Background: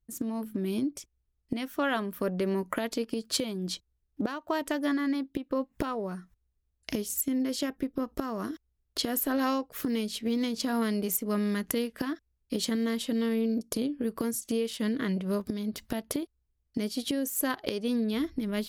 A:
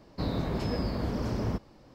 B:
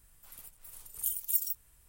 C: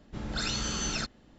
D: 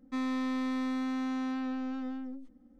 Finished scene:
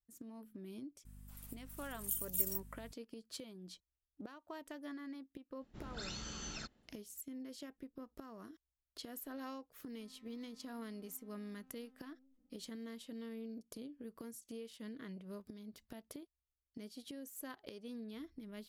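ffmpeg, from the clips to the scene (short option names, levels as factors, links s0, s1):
-filter_complex "[0:a]volume=0.119[s0];[2:a]aeval=exprs='val(0)+0.00398*(sin(2*PI*50*n/s)+sin(2*PI*2*50*n/s)/2+sin(2*PI*3*50*n/s)/3+sin(2*PI*4*50*n/s)/4+sin(2*PI*5*50*n/s)/5)':c=same[s1];[4:a]acompressor=threshold=0.00282:ratio=6:attack=3.2:release=140:knee=1:detection=peak[s2];[s1]atrim=end=1.88,asetpts=PTS-STARTPTS,volume=0.531,afade=t=in:d=0.004:c=hsin,afade=t=out:st=1.876:d=0.004:c=hsin,adelay=1050[s3];[3:a]atrim=end=1.38,asetpts=PTS-STARTPTS,volume=0.211,afade=t=in:d=0.004:c=hsin,afade=t=out:st=1.376:d=0.004:c=hsin,adelay=247401S[s4];[s2]atrim=end=2.79,asetpts=PTS-STARTPTS,volume=0.168,afade=t=in:d=0.004:c=hsin,afade=t=out:st=2.786:d=0.004:c=hsin,adelay=9890[s5];[s0][s3][s4][s5]amix=inputs=4:normalize=0"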